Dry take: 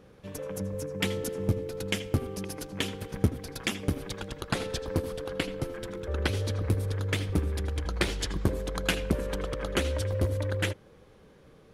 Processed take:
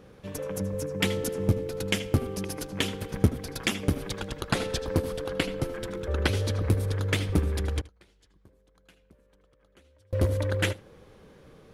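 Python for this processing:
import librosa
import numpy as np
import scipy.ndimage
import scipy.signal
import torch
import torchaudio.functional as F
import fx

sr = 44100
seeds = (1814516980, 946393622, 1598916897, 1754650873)

y = fx.gate_flip(x, sr, shuts_db=-29.0, range_db=-34, at=(7.8, 10.13))
y = y + 10.0 ** (-21.0 / 20.0) * np.pad(y, (int(76 * sr / 1000.0), 0))[:len(y)]
y = F.gain(torch.from_numpy(y), 3.0).numpy()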